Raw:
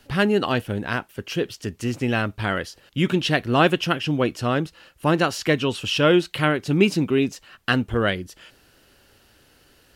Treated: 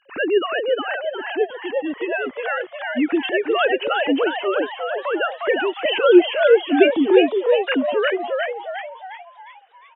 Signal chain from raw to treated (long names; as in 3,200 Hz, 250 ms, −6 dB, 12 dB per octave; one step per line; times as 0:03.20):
three sine waves on the formant tracks
echo with shifted repeats 357 ms, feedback 48%, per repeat +110 Hz, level −3 dB
level +1 dB